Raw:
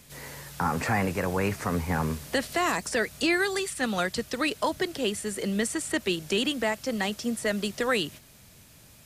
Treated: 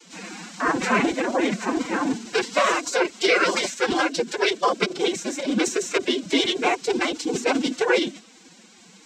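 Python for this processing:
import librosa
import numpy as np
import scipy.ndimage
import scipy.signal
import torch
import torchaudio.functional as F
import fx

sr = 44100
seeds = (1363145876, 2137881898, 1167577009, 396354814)

y = fx.hum_notches(x, sr, base_hz=60, count=6)
y = fx.noise_vocoder(y, sr, seeds[0], bands=12)
y = fx.pitch_keep_formants(y, sr, semitones=9.0)
y = F.gain(torch.from_numpy(y), 7.0).numpy()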